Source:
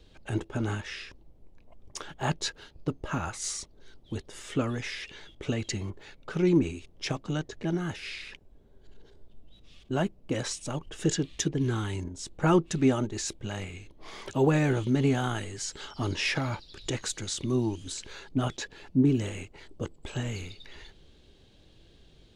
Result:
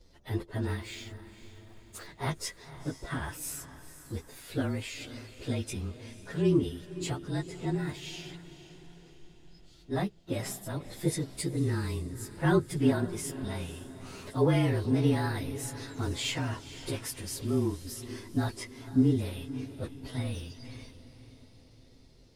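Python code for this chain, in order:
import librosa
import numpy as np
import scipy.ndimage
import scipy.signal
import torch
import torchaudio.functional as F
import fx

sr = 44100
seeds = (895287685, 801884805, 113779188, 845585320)

y = fx.partial_stretch(x, sr, pct=110)
y = fx.quant_float(y, sr, bits=2, at=(0.82, 2.07))
y = fx.echo_diffused(y, sr, ms=497, feedback_pct=49, wet_db=-14)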